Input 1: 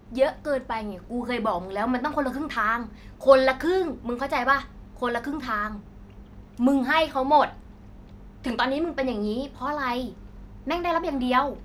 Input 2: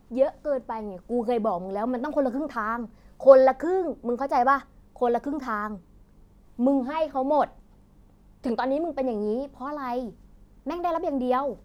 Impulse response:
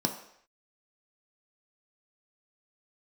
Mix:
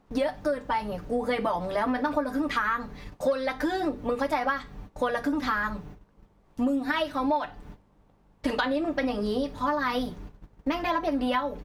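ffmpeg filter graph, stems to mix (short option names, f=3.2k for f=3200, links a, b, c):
-filter_complex "[0:a]aecho=1:1:6.8:0.69,volume=2.5dB[a];[1:a]asplit=2[b][c];[c]highpass=f=720:p=1,volume=12dB,asoftclip=type=tanh:threshold=-2.5dB[d];[b][d]amix=inputs=2:normalize=0,lowpass=f=1.8k:p=1,volume=-6dB,volume=-1,volume=-4.5dB,asplit=2[e][f];[f]apad=whole_len=513754[g];[a][g]sidechaingate=range=-33dB:threshold=-57dB:ratio=16:detection=peak[h];[h][e]amix=inputs=2:normalize=0,acompressor=threshold=-23dB:ratio=10"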